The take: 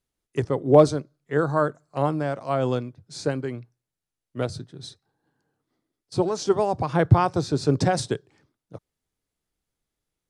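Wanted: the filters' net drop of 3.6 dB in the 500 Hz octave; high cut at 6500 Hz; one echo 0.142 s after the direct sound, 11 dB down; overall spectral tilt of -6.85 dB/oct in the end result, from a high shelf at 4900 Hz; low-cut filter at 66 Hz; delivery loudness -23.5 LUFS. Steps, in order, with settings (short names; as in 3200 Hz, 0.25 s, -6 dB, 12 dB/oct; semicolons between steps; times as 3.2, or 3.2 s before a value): HPF 66 Hz; LPF 6500 Hz; bell 500 Hz -4.5 dB; high shelf 4900 Hz -6.5 dB; echo 0.142 s -11 dB; gain +2.5 dB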